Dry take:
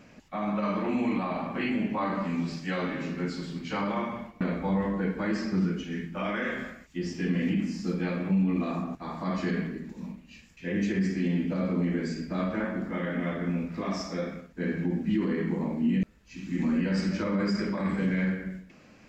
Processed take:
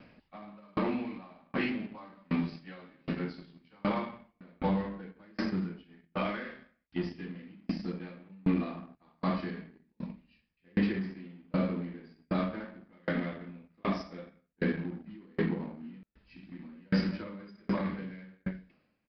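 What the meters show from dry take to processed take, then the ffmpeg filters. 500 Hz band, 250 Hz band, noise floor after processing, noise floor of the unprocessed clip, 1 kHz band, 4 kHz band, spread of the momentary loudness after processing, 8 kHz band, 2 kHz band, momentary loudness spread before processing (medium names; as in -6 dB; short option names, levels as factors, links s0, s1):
-5.5 dB, -6.5 dB, -75 dBFS, -55 dBFS, -5.5 dB, -5.0 dB, 17 LU, no reading, -6.0 dB, 8 LU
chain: -filter_complex "[0:a]asplit=2[s0][s1];[s1]acrusher=bits=4:mix=0:aa=0.5,volume=0.447[s2];[s0][s2]amix=inputs=2:normalize=0,aresample=11025,aresample=44100,aeval=exprs='val(0)*pow(10,-36*if(lt(mod(1.3*n/s,1),2*abs(1.3)/1000),1-mod(1.3*n/s,1)/(2*abs(1.3)/1000),(mod(1.3*n/s,1)-2*abs(1.3)/1000)/(1-2*abs(1.3)/1000))/20)':c=same"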